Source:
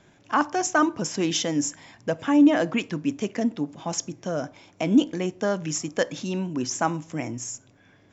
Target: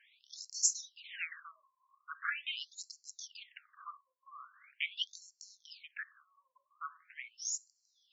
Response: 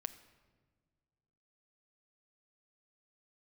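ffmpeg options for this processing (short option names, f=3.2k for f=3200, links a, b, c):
-filter_complex "[0:a]asettb=1/sr,asplit=3[a][b][c];[a]atrim=end=5.194[d];[b]atrim=start=5.19:end=7.45,asetpts=PTS-STARTPTS,afade=t=in:d=0.004:c=qsin,afade=t=out:st=2.256:d=0.004:c=qsin,acompressor=threshold=-32dB:ratio=6[e];[c]atrim=start=7.446[f];[d][e]acrossfade=d=0.004:c1=hsin:c2=qsin[g];[g][f]acrossfade=d=0.004:c1=qsin:c2=hsin,asuperstop=centerf=660:order=20:qfactor=0.94,afftfilt=real='re*between(b*sr/1024,760*pow(5900/760,0.5+0.5*sin(2*PI*0.42*pts/sr))/1.41,760*pow(5900/760,0.5+0.5*sin(2*PI*0.42*pts/sr))*1.41)':imag='im*between(b*sr/1024,760*pow(5900/760,0.5+0.5*sin(2*PI*0.42*pts/sr))/1.41,760*pow(5900/760,0.5+0.5*sin(2*PI*0.42*pts/sr))*1.41)':win_size=1024:overlap=0.75,volume=1dB"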